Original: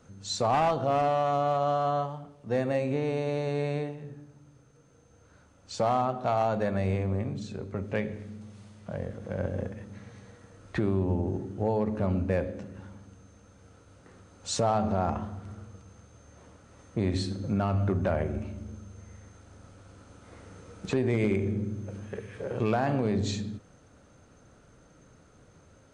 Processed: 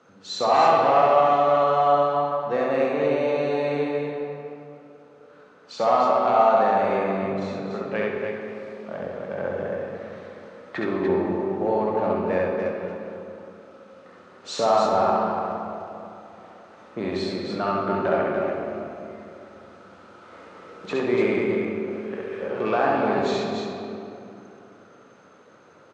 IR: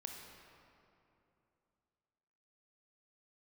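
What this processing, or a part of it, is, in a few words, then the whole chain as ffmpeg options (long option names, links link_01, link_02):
station announcement: -filter_complex "[0:a]highpass=310,lowpass=4100,equalizer=frequency=1200:width_type=o:width=0.38:gain=4,aecho=1:1:67.06|291.5:0.794|0.562[link_01];[1:a]atrim=start_sample=2205[link_02];[link_01][link_02]afir=irnorm=-1:irlink=0,volume=8.5dB"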